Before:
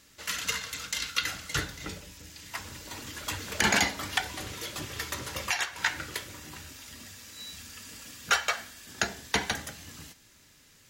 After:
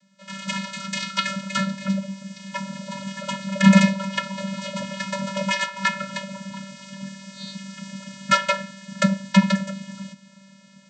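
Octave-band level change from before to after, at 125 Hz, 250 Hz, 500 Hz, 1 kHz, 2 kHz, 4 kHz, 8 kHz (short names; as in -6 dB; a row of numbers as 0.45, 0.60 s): +16.0, +20.0, +9.5, +7.5, +3.5, +3.0, -1.5 dB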